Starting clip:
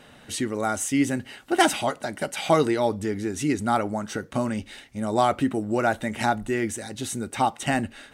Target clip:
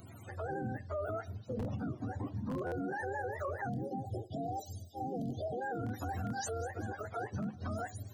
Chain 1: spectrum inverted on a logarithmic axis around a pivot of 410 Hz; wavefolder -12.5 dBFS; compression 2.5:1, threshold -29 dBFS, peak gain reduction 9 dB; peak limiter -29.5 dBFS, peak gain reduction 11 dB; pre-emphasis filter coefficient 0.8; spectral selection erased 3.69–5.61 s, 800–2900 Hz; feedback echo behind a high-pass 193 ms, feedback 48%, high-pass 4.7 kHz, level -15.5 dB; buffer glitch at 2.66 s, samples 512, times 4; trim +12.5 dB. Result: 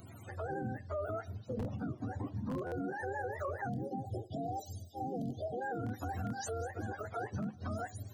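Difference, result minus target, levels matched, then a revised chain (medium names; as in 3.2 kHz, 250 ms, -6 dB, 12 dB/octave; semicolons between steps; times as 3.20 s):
compression: peak gain reduction +4.5 dB
spectrum inverted on a logarithmic axis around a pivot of 410 Hz; wavefolder -12.5 dBFS; compression 2.5:1, threshold -21.5 dBFS, peak gain reduction 4.5 dB; peak limiter -29.5 dBFS, peak gain reduction 15 dB; pre-emphasis filter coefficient 0.8; spectral selection erased 3.69–5.61 s, 800–2900 Hz; feedback echo behind a high-pass 193 ms, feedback 48%, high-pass 4.7 kHz, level -15.5 dB; buffer glitch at 2.66 s, samples 512, times 4; trim +12.5 dB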